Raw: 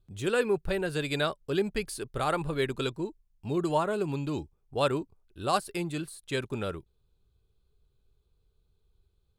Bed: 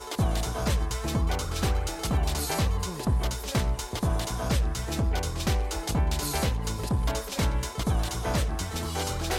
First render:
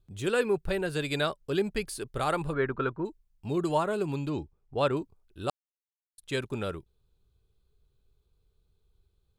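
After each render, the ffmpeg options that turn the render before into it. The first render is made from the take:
-filter_complex "[0:a]asplit=3[s0][s1][s2];[s0]afade=t=out:st=2.52:d=0.02[s3];[s1]lowpass=f=1400:t=q:w=2.7,afade=t=in:st=2.52:d=0.02,afade=t=out:st=3.04:d=0.02[s4];[s2]afade=t=in:st=3.04:d=0.02[s5];[s3][s4][s5]amix=inputs=3:normalize=0,asettb=1/sr,asplit=3[s6][s7][s8];[s6]atrim=end=4.294[s9];[s7]atrim=start=4.29:end=4.97,asetpts=PTS-STARTPTS,afade=t=in:d=0.004:c=qsin,afade=t=out:st=0.676:d=0.004:c=qsin,aemphasis=mode=reproduction:type=50fm[s10];[s8]atrim=start=4.966[s11];[s9][s10]acrossfade=d=0.004:c1=hsin:c2=qsin[s12];[s12][s11]acrossfade=d=0.004:c1=qsin:c2=hsin,asplit=3[s13][s14][s15];[s13]atrim=end=5.5,asetpts=PTS-STARTPTS,afade=t=out:st=5.496:d=0.004:c=hsin[s16];[s14]atrim=start=5.5:end=6.18,asetpts=PTS-STARTPTS,volume=0[s17];[s15]atrim=start=6.18,asetpts=PTS-STARTPTS,afade=t=in:d=0.004:c=hsin[s18];[s16][s17][s18]concat=n=3:v=0:a=1"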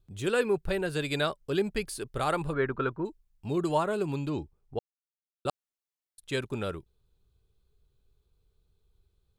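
-filter_complex "[0:a]asplit=3[s0][s1][s2];[s0]atrim=end=4.79,asetpts=PTS-STARTPTS,afade=t=out:st=4.786:d=0.004:c=hsin[s3];[s1]atrim=start=4.79:end=5.45,asetpts=PTS-STARTPTS,volume=0[s4];[s2]atrim=start=5.45,asetpts=PTS-STARTPTS,afade=t=in:d=0.004:c=hsin[s5];[s3][s4][s5]concat=n=3:v=0:a=1"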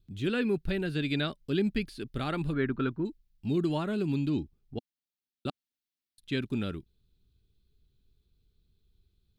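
-filter_complex "[0:a]acrossover=split=3700[s0][s1];[s1]acompressor=threshold=0.00251:ratio=4:attack=1:release=60[s2];[s0][s2]amix=inputs=2:normalize=0,equalizer=f=250:t=o:w=1:g=9,equalizer=f=500:t=o:w=1:g=-8,equalizer=f=1000:t=o:w=1:g=-9,equalizer=f=4000:t=o:w=1:g=5,equalizer=f=8000:t=o:w=1:g=-6"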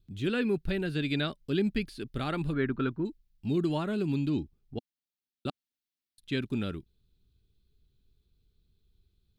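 -af anull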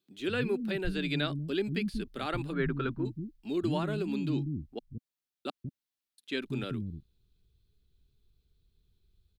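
-filter_complex "[0:a]acrossover=split=240[s0][s1];[s0]adelay=190[s2];[s2][s1]amix=inputs=2:normalize=0"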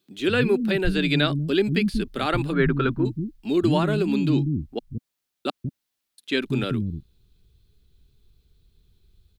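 -af "volume=3.16"

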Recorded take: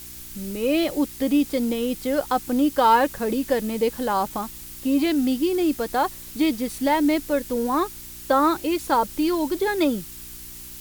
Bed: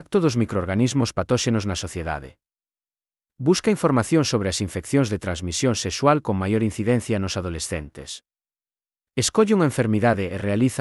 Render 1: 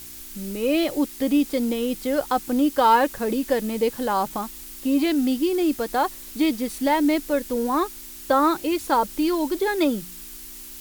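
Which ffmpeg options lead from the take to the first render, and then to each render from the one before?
-af "bandreject=f=60:t=h:w=4,bandreject=f=120:t=h:w=4,bandreject=f=180:t=h:w=4"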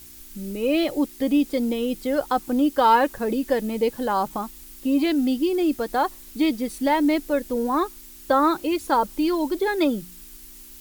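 -af "afftdn=nr=6:nf=-40"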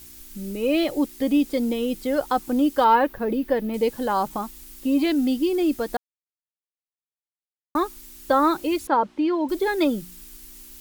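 -filter_complex "[0:a]asettb=1/sr,asplit=3[s0][s1][s2];[s0]atrim=end=2.844[s3];[s1]atrim=start=2.84:end=3.74,asetpts=PTS-STARTPTS,afade=t=in:d=0.004:c=qsin,afade=t=out:st=0.896:d=0.004:c=qsin,equalizer=f=7800:t=o:w=1.4:g=-15[s4];[s2]atrim=start=3.736[s5];[s3][s4]acrossfade=d=0.004:c1=hsin:c2=qsin[s6];[s6][s5]acrossfade=d=0.004:c1=qsin:c2=hsin,asettb=1/sr,asplit=3[s7][s8][s9];[s7]atrim=end=8.874[s10];[s8]atrim=start=8.87:end=9.49,asetpts=PTS-STARTPTS,afade=t=in:d=0.004:c=qsin,afade=t=out:st=0.616:d=0.004:c=qsin,highpass=120,lowpass=2600[s11];[s9]atrim=start=9.486[s12];[s10][s11]acrossfade=d=0.004:c1=hsin:c2=qsin[s13];[s13][s12]acrossfade=d=0.004:c1=qsin:c2=hsin,asplit=3[s14][s15][s16];[s14]atrim=end=5.97,asetpts=PTS-STARTPTS,afade=t=out:st=5.966:d=0.004:c=hsin[s17];[s15]atrim=start=5.97:end=7.75,asetpts=PTS-STARTPTS,volume=0[s18];[s16]atrim=start=7.75,asetpts=PTS-STARTPTS,afade=t=in:d=0.004:c=hsin[s19];[s17][s18][s19]concat=n=3:v=0:a=1"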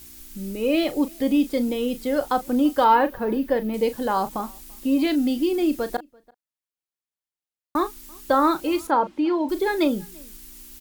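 -filter_complex "[0:a]asplit=2[s0][s1];[s1]adelay=37,volume=0.237[s2];[s0][s2]amix=inputs=2:normalize=0,asplit=2[s3][s4];[s4]adelay=338.2,volume=0.0447,highshelf=f=4000:g=-7.61[s5];[s3][s5]amix=inputs=2:normalize=0"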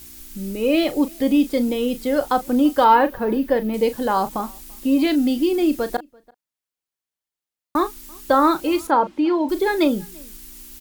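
-af "volume=1.41"

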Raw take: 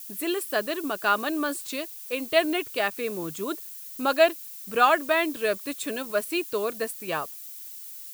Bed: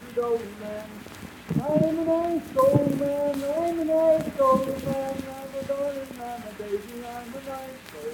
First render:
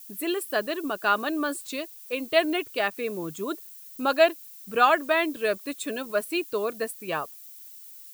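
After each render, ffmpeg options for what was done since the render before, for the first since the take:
-af "afftdn=nr=6:nf=-41"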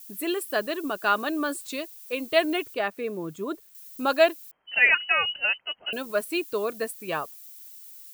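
-filter_complex "[0:a]asettb=1/sr,asplit=3[s0][s1][s2];[s0]atrim=end=2.744[s3];[s1]atrim=start=2.74:end=3.75,asetpts=PTS-STARTPTS,afade=t=in:d=0.004:c=qsin,afade=t=out:st=1.006:d=0.004:c=qsin,highshelf=f=2800:g=-9.5[s4];[s2]atrim=start=3.746[s5];[s3][s4]acrossfade=d=0.004:c1=hsin:c2=qsin[s6];[s6][s5]acrossfade=d=0.004:c1=qsin:c2=hsin,asettb=1/sr,asplit=3[s7][s8][s9];[s7]atrim=end=4.514[s10];[s8]atrim=start=4.51:end=5.93,asetpts=PTS-STARTPTS,afade=t=in:d=0.004:c=qsin,afade=t=out:st=1.416:d=0.004:c=qsin,lowpass=f=2700:t=q:w=0.5098,lowpass=f=2700:t=q:w=0.6013,lowpass=f=2700:t=q:w=0.9,lowpass=f=2700:t=q:w=2.563,afreqshift=-3200[s11];[s9]atrim=start=5.926[s12];[s10][s11]acrossfade=d=0.004:c1=hsin:c2=qsin[s13];[s13][s12]acrossfade=d=0.004:c1=qsin:c2=hsin"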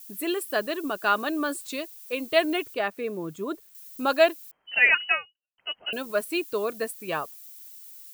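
-filter_complex "[0:a]asplit=2[s0][s1];[s0]atrim=end=5.58,asetpts=PTS-STARTPTS,afade=t=out:st=5.14:d=0.44:c=exp[s2];[s1]atrim=start=5.58,asetpts=PTS-STARTPTS,afade=t=in:d=0.004:c=hsin[s3];[s2][s3]concat=n=2:v=0:a=1"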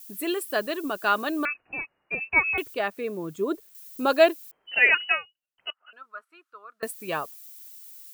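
-filter_complex "[0:a]asettb=1/sr,asplit=3[s0][s1][s2];[s0]atrim=end=1.454[s3];[s1]atrim=start=1.45:end=2.58,asetpts=PTS-STARTPTS,afade=t=in:d=0.004:c=qsin,afade=t=out:st=1.126:d=0.004:c=qsin,lowpass=f=2500:t=q:w=0.5098,lowpass=f=2500:t=q:w=0.6013,lowpass=f=2500:t=q:w=0.9,lowpass=f=2500:t=q:w=2.563,afreqshift=-2900[s4];[s2]atrim=start=2.576[s5];[s3][s4]acrossfade=d=0.004:c1=hsin:c2=qsin[s6];[s6][s5]acrossfade=d=0.004:c1=qsin:c2=hsin,asettb=1/sr,asplit=3[s7][s8][s9];[s7]atrim=end=3.394[s10];[s8]atrim=start=3.39:end=5.05,asetpts=PTS-STARTPTS,afade=t=in:d=0.004:c=qsin,afade=t=out:st=1.656:d=0.004:c=qsin,equalizer=f=410:t=o:w=0.77:g=7[s11];[s9]atrim=start=5.046[s12];[s10][s11]acrossfade=d=0.004:c1=hsin:c2=qsin[s13];[s13][s12]acrossfade=d=0.004:c1=qsin:c2=hsin,asettb=1/sr,asplit=3[s14][s15][s16];[s14]atrim=end=5.704[s17];[s15]atrim=start=5.7:end=6.83,asetpts=PTS-STARTPTS,afade=t=in:d=0.004:c=qsin,afade=t=out:st=1.126:d=0.004:c=qsin,bandpass=f=1300:t=q:w=9.6[s18];[s16]atrim=start=6.826[s19];[s17][s18]acrossfade=d=0.004:c1=hsin:c2=qsin[s20];[s20][s19]acrossfade=d=0.004:c1=qsin:c2=hsin"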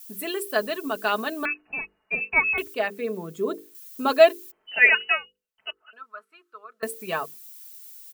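-af "bandreject=f=50:t=h:w=6,bandreject=f=100:t=h:w=6,bandreject=f=150:t=h:w=6,bandreject=f=200:t=h:w=6,bandreject=f=250:t=h:w=6,bandreject=f=300:t=h:w=6,bandreject=f=350:t=h:w=6,bandreject=f=400:t=h:w=6,bandreject=f=450:t=h:w=6,bandreject=f=500:t=h:w=6,aecho=1:1:4.6:0.54"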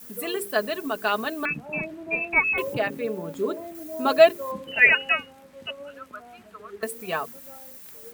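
-filter_complex "[1:a]volume=0.224[s0];[0:a][s0]amix=inputs=2:normalize=0"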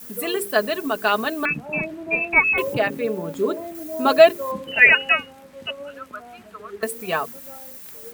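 -af "volume=1.68,alimiter=limit=0.891:level=0:latency=1"

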